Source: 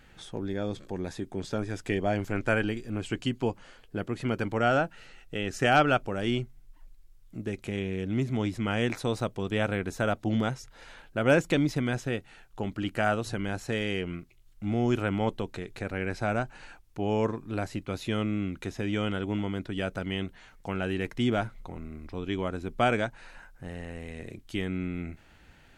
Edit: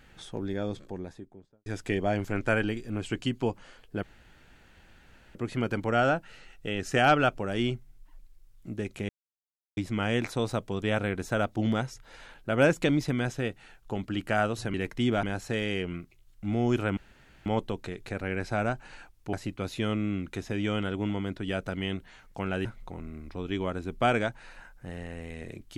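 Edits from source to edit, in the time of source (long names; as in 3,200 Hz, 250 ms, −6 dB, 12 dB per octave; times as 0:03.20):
0:00.54–0:01.66: fade out and dull
0:04.03: splice in room tone 1.32 s
0:07.77–0:08.45: silence
0:15.16: splice in room tone 0.49 s
0:17.03–0:17.62: remove
0:20.94–0:21.43: move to 0:13.42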